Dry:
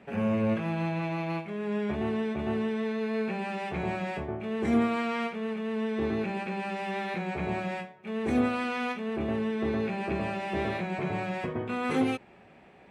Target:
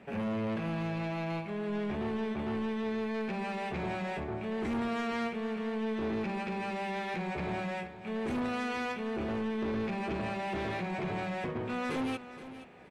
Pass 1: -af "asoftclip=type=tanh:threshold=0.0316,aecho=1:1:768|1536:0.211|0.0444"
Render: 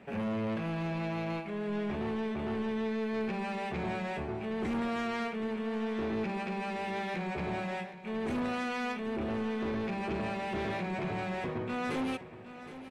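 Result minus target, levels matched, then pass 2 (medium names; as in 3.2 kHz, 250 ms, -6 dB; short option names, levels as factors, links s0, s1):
echo 296 ms late
-af "asoftclip=type=tanh:threshold=0.0316,aecho=1:1:472|944:0.211|0.0444"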